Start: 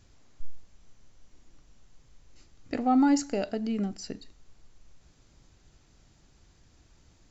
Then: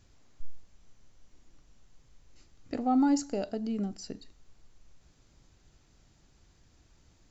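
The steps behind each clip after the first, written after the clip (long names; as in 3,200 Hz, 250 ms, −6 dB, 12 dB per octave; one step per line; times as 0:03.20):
dynamic equaliser 2,100 Hz, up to −7 dB, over −53 dBFS, Q 1.2
level −2.5 dB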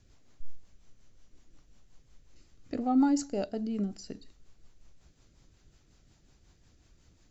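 rotating-speaker cabinet horn 5.5 Hz
level +1.5 dB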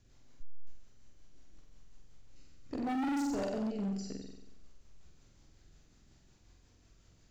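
flutter between parallel walls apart 7.9 metres, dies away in 0.86 s
gain into a clipping stage and back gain 28 dB
level −3.5 dB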